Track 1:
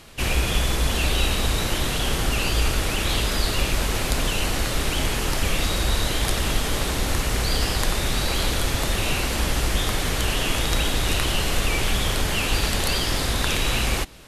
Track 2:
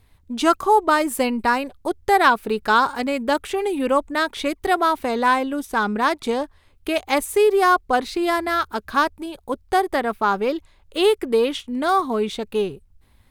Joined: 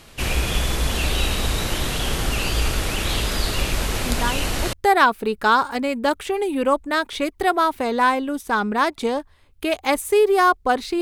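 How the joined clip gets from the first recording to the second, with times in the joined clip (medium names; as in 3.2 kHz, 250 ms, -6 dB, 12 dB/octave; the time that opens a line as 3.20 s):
track 1
4.06 s: add track 2 from 1.30 s 0.67 s -6 dB
4.73 s: go over to track 2 from 1.97 s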